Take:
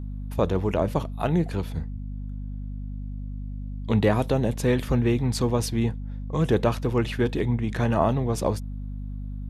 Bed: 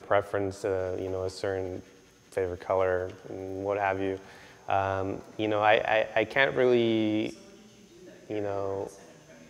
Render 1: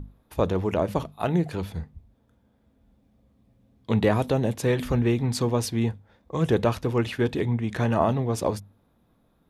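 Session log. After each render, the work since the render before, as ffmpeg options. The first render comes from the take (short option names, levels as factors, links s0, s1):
-af "bandreject=f=50:t=h:w=6,bandreject=f=100:t=h:w=6,bandreject=f=150:t=h:w=6,bandreject=f=200:t=h:w=6,bandreject=f=250:t=h:w=6"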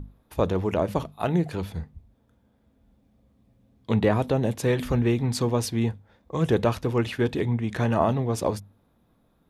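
-filter_complex "[0:a]asettb=1/sr,asplit=3[s0][s1][s2];[s0]atrim=end=3.954[s3];[s1]atrim=start=3.95:end=4.43,asetpts=PTS-STARTPTS,afade=t=in:d=0.004:c=qsin,afade=t=out:st=0.476:d=0.004:c=qsin,highshelf=f=4100:g=-6[s4];[s2]atrim=start=4.426[s5];[s3][s4]acrossfade=d=0.004:c1=hsin:c2=qsin[s6];[s6][s5]acrossfade=d=0.004:c1=qsin:c2=hsin"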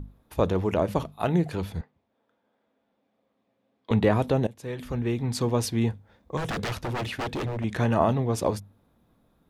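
-filter_complex "[0:a]asettb=1/sr,asplit=3[s0][s1][s2];[s0]atrim=end=1.814[s3];[s1]atrim=start=1.81:end=3.91,asetpts=PTS-STARTPTS,afade=t=in:d=0.004:c=qsin,afade=t=out:st=2.096:d=0.004:c=qsin,highpass=440,lowpass=3800[s4];[s2]atrim=start=3.906[s5];[s3][s4]acrossfade=d=0.004:c1=hsin:c2=qsin[s6];[s6][s5]acrossfade=d=0.004:c1=qsin:c2=hsin,asettb=1/sr,asplit=3[s7][s8][s9];[s7]atrim=end=6.374[s10];[s8]atrim=start=6.37:end=7.64,asetpts=PTS-STARTPTS,afade=t=in:d=0.004:c=qsin,afade=t=out:st=1.266:d=0.004:c=qsin,aeval=exprs='0.0596*(abs(mod(val(0)/0.0596+3,4)-2)-1)':c=same[s11];[s9]atrim=start=7.636[s12];[s10][s11]acrossfade=d=0.004:c1=hsin:c2=qsin[s13];[s13][s12]acrossfade=d=0.004:c1=qsin:c2=hsin,asplit=2[s14][s15];[s14]atrim=end=4.47,asetpts=PTS-STARTPTS,afade=t=out:st=4.466:d=0.004:c=hsin:silence=0.0944061[s16];[s15]atrim=start=4.47,asetpts=PTS-STARTPTS,afade=t=in:d=1.15:silence=0.0944061[s17];[s16][s17]concat=n=2:v=0:a=1"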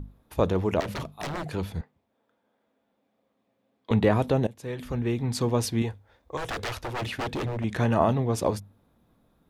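-filter_complex "[0:a]asettb=1/sr,asplit=3[s0][s1][s2];[s0]atrim=end=0.804[s3];[s1]atrim=start=0.8:end=1.46,asetpts=PTS-STARTPTS,afade=t=in:d=0.004:c=qsin,afade=t=out:st=0.656:d=0.004:c=qsin,aeval=exprs='0.0447*(abs(mod(val(0)/0.0447+3,4)-2)-1)':c=same[s4];[s2]atrim=start=1.456[s5];[s3][s4]acrossfade=d=0.004:c1=hsin:c2=qsin[s6];[s6][s5]acrossfade=d=0.004:c1=qsin:c2=hsin,asettb=1/sr,asplit=3[s7][s8][s9];[s7]atrim=end=5.824[s10];[s8]atrim=start=5.82:end=7.02,asetpts=PTS-STARTPTS,afade=t=in:d=0.004:c=qsin,afade=t=out:st=1.196:d=0.004:c=qsin,equalizer=f=180:w=1.5:g=-14.5[s11];[s9]atrim=start=7.016[s12];[s10][s11]acrossfade=d=0.004:c1=hsin:c2=qsin[s13];[s13][s12]acrossfade=d=0.004:c1=qsin:c2=hsin"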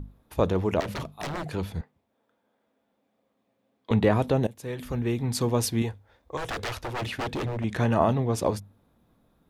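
-filter_complex "[0:a]asettb=1/sr,asplit=3[s0][s1][s2];[s0]atrim=end=4.404[s3];[s1]atrim=start=4.4:end=5.9,asetpts=PTS-STARTPTS,afade=t=in:d=0.004:c=qsin,afade=t=out:st=1.496:d=0.004:c=qsin,highshelf=f=9600:g=8.5[s4];[s2]atrim=start=5.896[s5];[s3][s4]acrossfade=d=0.004:c1=hsin:c2=qsin[s6];[s6][s5]acrossfade=d=0.004:c1=qsin:c2=hsin"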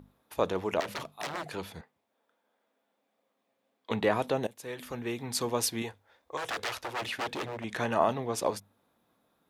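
-af "highpass=f=630:p=1"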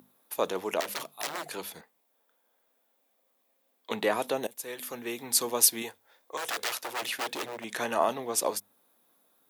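-af "highpass=250,aemphasis=mode=production:type=50fm"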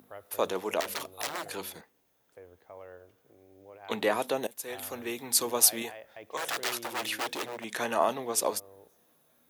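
-filter_complex "[1:a]volume=0.0841[s0];[0:a][s0]amix=inputs=2:normalize=0"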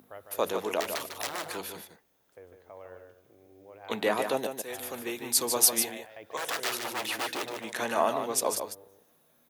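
-af "aecho=1:1:150:0.447"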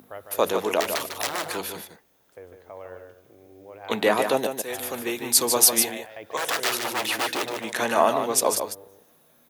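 -af "volume=2.11,alimiter=limit=0.708:level=0:latency=1"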